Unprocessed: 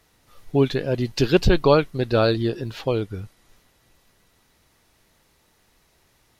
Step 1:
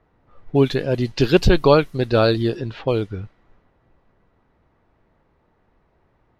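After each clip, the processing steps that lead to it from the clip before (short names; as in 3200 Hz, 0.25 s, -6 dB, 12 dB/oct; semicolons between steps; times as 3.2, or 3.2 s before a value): low-pass opened by the level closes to 1200 Hz, open at -17.5 dBFS; gain +2.5 dB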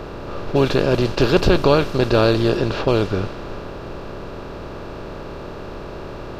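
per-bin compression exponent 0.4; gain -4 dB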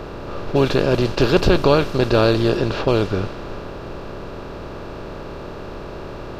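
nothing audible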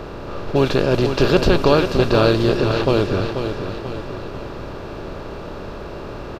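feedback echo 0.487 s, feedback 49%, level -7.5 dB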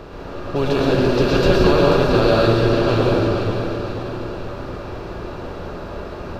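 plate-style reverb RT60 1.7 s, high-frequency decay 0.55×, pre-delay 95 ms, DRR -4.5 dB; gain -5 dB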